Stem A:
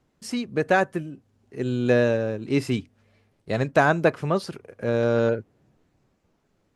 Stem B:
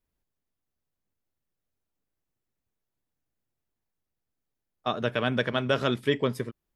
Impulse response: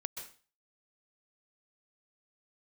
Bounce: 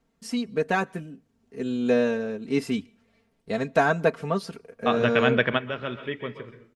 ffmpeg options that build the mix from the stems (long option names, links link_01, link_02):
-filter_complex "[0:a]aecho=1:1:4.4:0.74,volume=-4.5dB,asplit=3[link_01][link_02][link_03];[link_02]volume=-23.5dB[link_04];[1:a]lowpass=frequency=2500:width_type=q:width=1.7,volume=1.5dB,asplit=2[link_05][link_06];[link_06]volume=-11dB[link_07];[link_03]apad=whole_len=297684[link_08];[link_05][link_08]sidechaingate=range=-18dB:threshold=-52dB:ratio=16:detection=peak[link_09];[2:a]atrim=start_sample=2205[link_10];[link_04][link_07]amix=inputs=2:normalize=0[link_11];[link_11][link_10]afir=irnorm=-1:irlink=0[link_12];[link_01][link_09][link_12]amix=inputs=3:normalize=0"